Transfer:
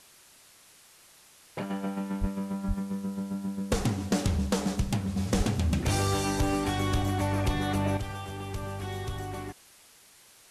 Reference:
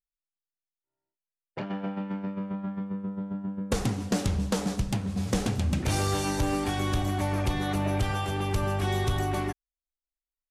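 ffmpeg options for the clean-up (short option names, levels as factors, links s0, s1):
-filter_complex "[0:a]asplit=3[s0][s1][s2];[s0]afade=t=out:st=2.2:d=0.02[s3];[s1]highpass=f=140:w=0.5412,highpass=f=140:w=1.3066,afade=t=in:st=2.2:d=0.02,afade=t=out:st=2.32:d=0.02[s4];[s2]afade=t=in:st=2.32:d=0.02[s5];[s3][s4][s5]amix=inputs=3:normalize=0,asplit=3[s6][s7][s8];[s6]afade=t=out:st=2.67:d=0.02[s9];[s7]highpass=f=140:w=0.5412,highpass=f=140:w=1.3066,afade=t=in:st=2.67:d=0.02,afade=t=out:st=2.79:d=0.02[s10];[s8]afade=t=in:st=2.79:d=0.02[s11];[s9][s10][s11]amix=inputs=3:normalize=0,asplit=3[s12][s13][s14];[s12]afade=t=out:st=5.37:d=0.02[s15];[s13]highpass=f=140:w=0.5412,highpass=f=140:w=1.3066,afade=t=in:st=5.37:d=0.02,afade=t=out:st=5.49:d=0.02[s16];[s14]afade=t=in:st=5.49:d=0.02[s17];[s15][s16][s17]amix=inputs=3:normalize=0,afwtdn=0.002,asetnsamples=n=441:p=0,asendcmd='7.97 volume volume 8dB',volume=1"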